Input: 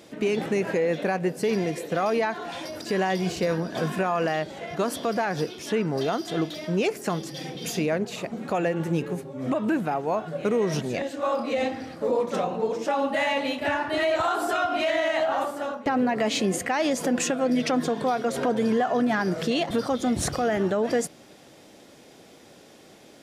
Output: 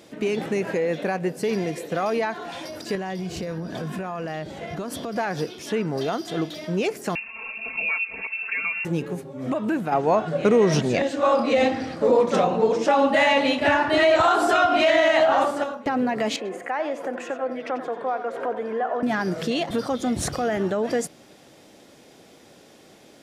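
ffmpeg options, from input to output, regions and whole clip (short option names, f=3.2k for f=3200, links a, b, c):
-filter_complex "[0:a]asettb=1/sr,asplit=3[a][b][c];[a]atrim=end=2.954[d];[b]atrim=start=2.95:end=5.16,asetpts=PTS-STARTPTS,afade=t=in:d=0.004:c=qsin,afade=t=out:st=2.206:d=0.004:c=qsin,lowshelf=f=200:g=9.5,acompressor=threshold=-27dB:ratio=6:attack=3.2:release=140:knee=1:detection=peak[e];[c]atrim=start=5.156[f];[d][e]acrossfade=d=0.004:c1=hsin:c2=qsin[g];[g][f]acrossfade=d=0.004:c1=qsin:c2=hsin,asettb=1/sr,asplit=3[h][i][j];[h]atrim=end=7.154[k];[i]atrim=start=7.15:end=8.85,asetpts=PTS-STARTPTS,afade=t=in:d=0.004:c=qsin,afade=t=out:st=1.696:d=0.004:c=qsin,aecho=1:1:4.5:0.89,atrim=end_sample=74970,lowpass=f=2.5k:t=q:w=0.5098,lowpass=f=2.5k:t=q:w=0.6013,lowpass=f=2.5k:t=q:w=0.9,lowpass=f=2.5k:t=q:w=2.563,afreqshift=-2900,acompressor=threshold=-28dB:ratio=1.5:attack=3.2:release=140:knee=1:detection=peak[l];[j]atrim=start=8.846[m];[k][l]acrossfade=d=0.004:c1=hsin:c2=qsin[n];[n][m]acrossfade=d=0.004:c1=qsin:c2=hsin,asettb=1/sr,asplit=3[o][p][q];[o]atrim=end=9.924[r];[p]atrim=start=9.92:end=15.64,asetpts=PTS-STARTPTS,afade=t=in:d=0.004:c=qsin,afade=t=out:st=5.716:d=0.004:c=qsin,acontrast=67,lowpass=8.3k[s];[q]atrim=start=15.636[t];[r][s]acrossfade=d=0.004:c1=hsin:c2=qsin[u];[u][t]acrossfade=d=0.004:c1=qsin:c2=hsin,asettb=1/sr,asplit=3[v][w][x];[v]atrim=end=16.364[y];[w]atrim=start=16.36:end=19.03,asetpts=PTS-STARTPTS,afade=t=in:d=0.004:c=qsin,afade=t=out:st=2.666:d=0.004:c=qsin,highpass=f=190:p=1,acrossover=split=340 2200:gain=0.158 1 0.1[z][aa][ab];[z][aa][ab]amix=inputs=3:normalize=0,aecho=1:1:90:0.282,atrim=end_sample=117747[ac];[x]atrim=start=19.026[ad];[y][ac]acrossfade=d=0.004:c1=hsin:c2=qsin[ae];[ae][ad]acrossfade=d=0.004:c1=qsin:c2=hsin"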